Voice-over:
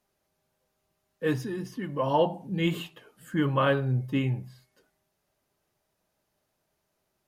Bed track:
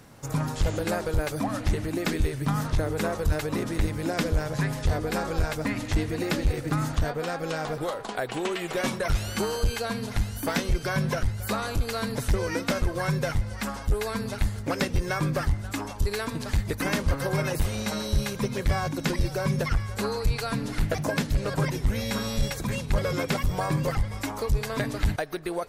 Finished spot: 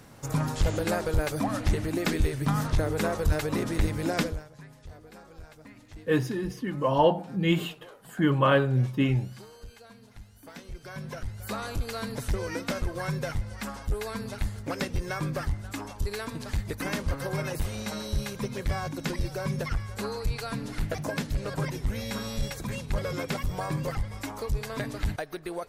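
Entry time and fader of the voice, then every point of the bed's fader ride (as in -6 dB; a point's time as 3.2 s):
4.85 s, +2.5 dB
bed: 4.22 s 0 dB
4.5 s -21 dB
10.37 s -21 dB
11.61 s -4.5 dB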